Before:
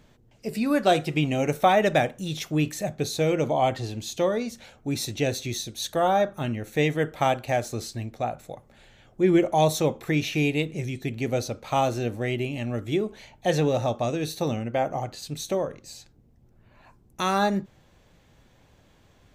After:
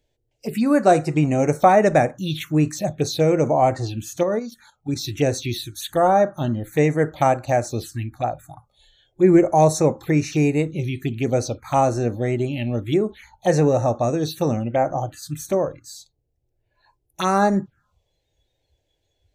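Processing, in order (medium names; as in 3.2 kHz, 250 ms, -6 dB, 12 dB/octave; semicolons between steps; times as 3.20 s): touch-sensitive phaser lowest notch 190 Hz, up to 3.3 kHz, full sweep at -23 dBFS; 4.23–5.05 s: level held to a coarse grid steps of 9 dB; spectral noise reduction 18 dB; trim +6 dB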